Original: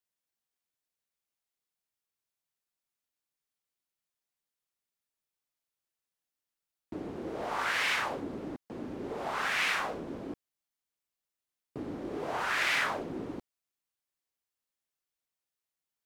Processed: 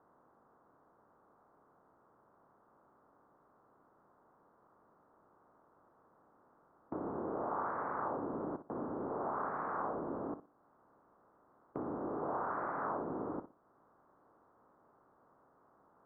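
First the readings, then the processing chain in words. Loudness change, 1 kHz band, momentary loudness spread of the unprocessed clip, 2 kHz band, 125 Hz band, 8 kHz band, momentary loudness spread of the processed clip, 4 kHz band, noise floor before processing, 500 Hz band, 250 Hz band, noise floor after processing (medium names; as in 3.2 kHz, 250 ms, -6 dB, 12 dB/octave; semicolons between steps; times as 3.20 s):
-6.5 dB, -2.0 dB, 15 LU, -18.0 dB, -3.0 dB, under -30 dB, 6 LU, under -40 dB, under -85 dBFS, -0.5 dB, -1.5 dB, -70 dBFS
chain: spectral levelling over time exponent 0.6; steep low-pass 1.3 kHz 48 dB/octave; bass shelf 91 Hz -8.5 dB; compression 1.5:1, threshold -55 dBFS, peak gain reduction 9.5 dB; flutter echo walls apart 10.3 m, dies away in 0.3 s; trim +4 dB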